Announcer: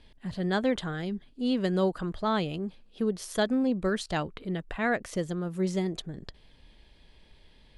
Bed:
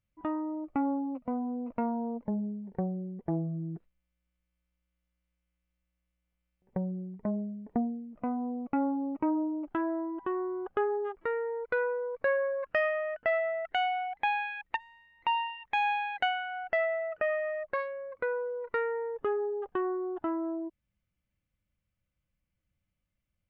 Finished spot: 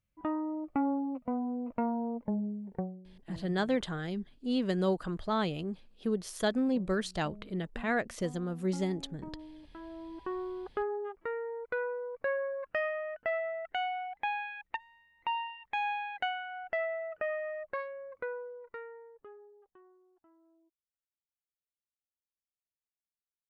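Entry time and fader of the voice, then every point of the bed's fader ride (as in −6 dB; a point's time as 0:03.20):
3.05 s, −3.0 dB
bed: 0:02.76 −0.5 dB
0:03.05 −17 dB
0:09.77 −17 dB
0:10.27 −4.5 dB
0:18.17 −4.5 dB
0:20.11 −33.5 dB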